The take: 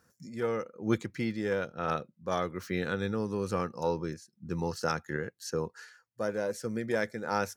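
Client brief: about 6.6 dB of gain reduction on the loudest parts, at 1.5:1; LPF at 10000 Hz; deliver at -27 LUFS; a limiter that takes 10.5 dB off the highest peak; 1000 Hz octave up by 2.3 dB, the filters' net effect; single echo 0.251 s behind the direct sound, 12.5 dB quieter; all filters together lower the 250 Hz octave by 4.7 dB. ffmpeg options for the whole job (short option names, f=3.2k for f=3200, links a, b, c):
-af "lowpass=10k,equalizer=f=250:t=o:g=-7,equalizer=f=1k:t=o:g=3.5,acompressor=threshold=-43dB:ratio=1.5,alimiter=level_in=6.5dB:limit=-24dB:level=0:latency=1,volume=-6.5dB,aecho=1:1:251:0.237,volume=16dB"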